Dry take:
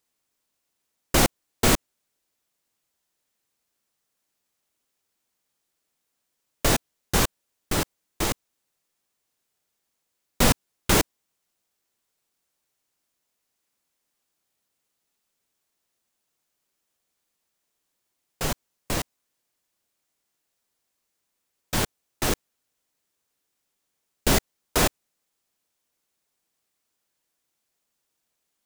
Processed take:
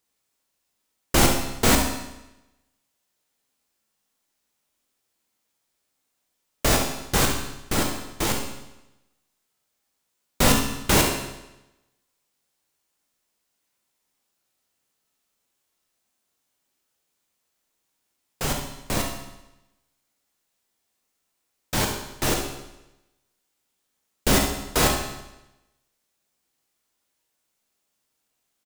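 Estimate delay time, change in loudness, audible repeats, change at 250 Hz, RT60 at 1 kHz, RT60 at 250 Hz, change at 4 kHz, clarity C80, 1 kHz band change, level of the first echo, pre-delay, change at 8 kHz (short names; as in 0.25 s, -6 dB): 69 ms, +2.0 dB, 1, +2.5 dB, 0.95 s, 0.95 s, +2.5 dB, 7.0 dB, +3.0 dB, -9.5 dB, 15 ms, +2.5 dB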